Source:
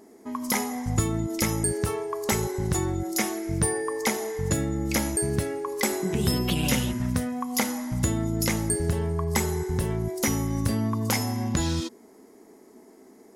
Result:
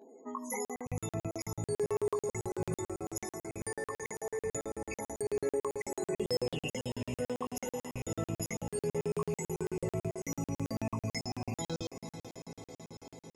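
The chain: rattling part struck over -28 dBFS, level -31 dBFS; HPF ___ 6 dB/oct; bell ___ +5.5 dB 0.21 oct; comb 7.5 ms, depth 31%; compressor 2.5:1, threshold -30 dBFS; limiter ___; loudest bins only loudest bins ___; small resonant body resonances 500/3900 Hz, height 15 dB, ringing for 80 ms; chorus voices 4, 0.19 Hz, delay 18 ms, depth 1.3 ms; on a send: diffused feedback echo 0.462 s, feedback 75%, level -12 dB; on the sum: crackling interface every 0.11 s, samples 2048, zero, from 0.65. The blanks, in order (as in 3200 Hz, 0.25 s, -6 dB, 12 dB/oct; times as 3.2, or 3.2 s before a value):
270 Hz, 6600 Hz, -19 dBFS, 32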